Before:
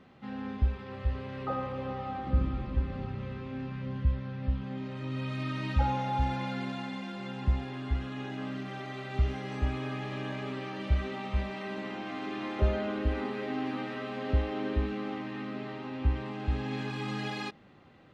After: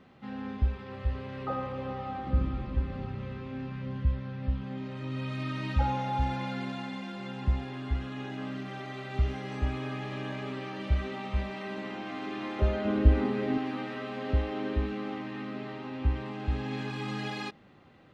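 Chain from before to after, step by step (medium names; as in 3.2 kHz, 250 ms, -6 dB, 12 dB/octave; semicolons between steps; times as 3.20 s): 12.85–13.58 s: bass shelf 350 Hz +10.5 dB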